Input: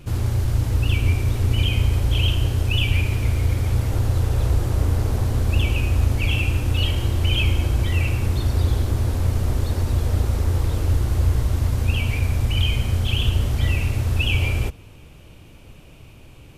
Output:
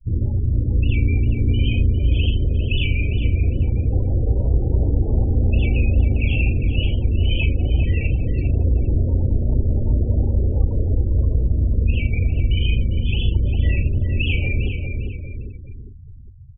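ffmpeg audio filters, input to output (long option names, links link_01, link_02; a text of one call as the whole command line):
ffmpeg -i in.wav -filter_complex "[0:a]highshelf=frequency=3600:gain=-4,asplit=2[link_01][link_02];[link_02]adelay=39,volume=-5dB[link_03];[link_01][link_03]amix=inputs=2:normalize=0,adynamicequalizer=threshold=0.00562:dfrequency=5200:dqfactor=0.85:tfrequency=5200:tqfactor=0.85:attack=5:release=100:ratio=0.375:range=2:mode=cutabove:tftype=bell,afftdn=noise_reduction=28:noise_floor=-26,asplit=2[link_04][link_05];[link_05]adelay=402,lowpass=frequency=1900:poles=1,volume=-6dB,asplit=2[link_06][link_07];[link_07]adelay=402,lowpass=frequency=1900:poles=1,volume=0.49,asplit=2[link_08][link_09];[link_09]adelay=402,lowpass=frequency=1900:poles=1,volume=0.49,asplit=2[link_10][link_11];[link_11]adelay=402,lowpass=frequency=1900:poles=1,volume=0.49,asplit=2[link_12][link_13];[link_13]adelay=402,lowpass=frequency=1900:poles=1,volume=0.49,asplit=2[link_14][link_15];[link_15]adelay=402,lowpass=frequency=1900:poles=1,volume=0.49[link_16];[link_04][link_06][link_08][link_10][link_12][link_14][link_16]amix=inputs=7:normalize=0,asplit=2[link_17][link_18];[link_18]acompressor=threshold=-26dB:ratio=10,volume=-2.5dB[link_19];[link_17][link_19]amix=inputs=2:normalize=0,bandreject=frequency=3200:width=20,afftfilt=real='re*gte(hypot(re,im),0.0141)':imag='im*gte(hypot(re,im),0.0141)':win_size=1024:overlap=0.75" out.wav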